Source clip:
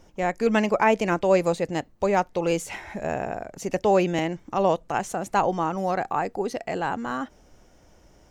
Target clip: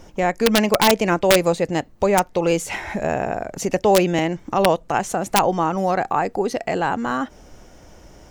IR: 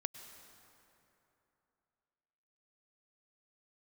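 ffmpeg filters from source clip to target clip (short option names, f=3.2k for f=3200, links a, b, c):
-filter_complex "[0:a]asplit=2[a][b];[b]acompressor=threshold=-33dB:ratio=16,volume=1.5dB[c];[a][c]amix=inputs=2:normalize=0,aeval=exprs='(mod(2.82*val(0)+1,2)-1)/2.82':c=same,volume=3dB"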